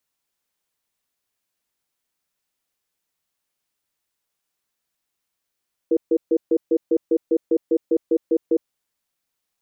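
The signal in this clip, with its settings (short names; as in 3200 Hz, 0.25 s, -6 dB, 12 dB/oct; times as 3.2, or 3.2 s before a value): cadence 331 Hz, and 478 Hz, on 0.06 s, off 0.14 s, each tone -17 dBFS 2.79 s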